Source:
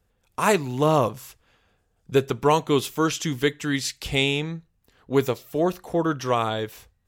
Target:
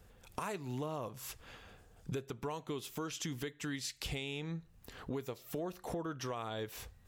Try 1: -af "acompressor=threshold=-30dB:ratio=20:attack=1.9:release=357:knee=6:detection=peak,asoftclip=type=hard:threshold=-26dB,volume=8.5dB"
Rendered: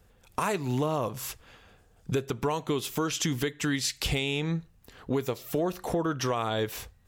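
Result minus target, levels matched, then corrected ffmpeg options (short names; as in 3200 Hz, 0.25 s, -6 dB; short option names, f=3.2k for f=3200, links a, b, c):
compressor: peak gain reduction -11.5 dB
-af "acompressor=threshold=-42dB:ratio=20:attack=1.9:release=357:knee=6:detection=peak,asoftclip=type=hard:threshold=-26dB,volume=8.5dB"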